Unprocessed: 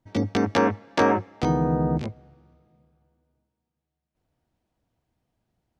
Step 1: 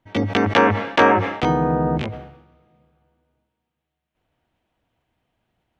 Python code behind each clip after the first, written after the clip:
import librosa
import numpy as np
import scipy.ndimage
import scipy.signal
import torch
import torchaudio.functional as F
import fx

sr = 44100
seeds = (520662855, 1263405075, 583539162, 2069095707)

y = fx.curve_eq(x, sr, hz=(180.0, 3100.0, 4800.0), db=(0, 10, -2))
y = fx.sustainer(y, sr, db_per_s=72.0)
y = y * librosa.db_to_amplitude(1.0)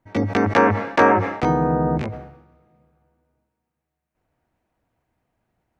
y = fx.peak_eq(x, sr, hz=3200.0, db=-11.0, octaves=0.64)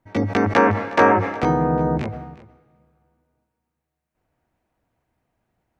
y = x + 10.0 ** (-19.5 / 20.0) * np.pad(x, (int(363 * sr / 1000.0), 0))[:len(x)]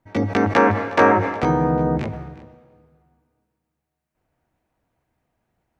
y = fx.rev_plate(x, sr, seeds[0], rt60_s=1.8, hf_ratio=0.85, predelay_ms=0, drr_db=14.0)